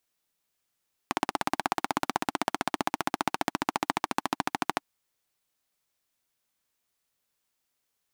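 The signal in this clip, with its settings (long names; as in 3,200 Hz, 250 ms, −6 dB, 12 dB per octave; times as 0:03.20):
pulse-train model of a single-cylinder engine, changing speed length 3.72 s, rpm 2,000, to 1,600, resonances 300/810 Hz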